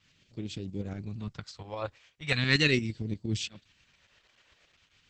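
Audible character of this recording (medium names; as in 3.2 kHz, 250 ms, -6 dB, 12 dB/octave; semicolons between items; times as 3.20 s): tremolo saw up 8.6 Hz, depth 55%; phasing stages 2, 0.4 Hz, lowest notch 210–1200 Hz; Opus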